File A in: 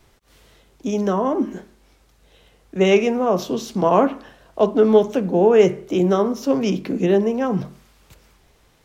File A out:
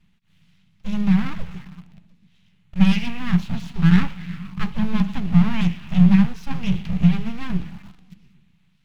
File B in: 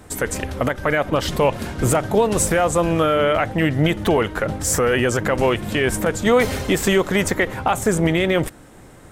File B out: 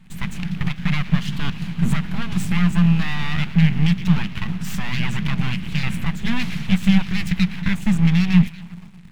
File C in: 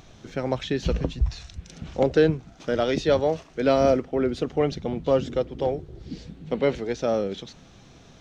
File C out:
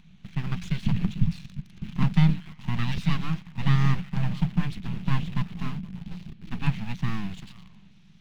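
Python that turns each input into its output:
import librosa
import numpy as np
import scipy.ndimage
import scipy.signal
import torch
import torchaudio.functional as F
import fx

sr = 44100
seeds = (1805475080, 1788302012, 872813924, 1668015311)

p1 = x + fx.echo_stepped(x, sr, ms=117, hz=2800.0, octaves=-0.7, feedback_pct=70, wet_db=-11, dry=0)
p2 = fx.filter_lfo_notch(p1, sr, shape='square', hz=1.2, low_hz=400.0, high_hz=5100.0, q=2.8)
p3 = fx.quant_dither(p2, sr, seeds[0], bits=6, dither='none')
p4 = p2 + (p3 * librosa.db_to_amplitude(-4.0))
p5 = fx.high_shelf(p4, sr, hz=5900.0, db=-7.0)
p6 = np.abs(p5)
p7 = fx.curve_eq(p6, sr, hz=(110.0, 180.0, 280.0, 530.0, 840.0, 1400.0, 2600.0, 3900.0, 8100.0), db=(0, 15, -9, -21, -12, -9, 0, -3, -10))
y = p7 * librosa.db_to_amplitude(-3.5)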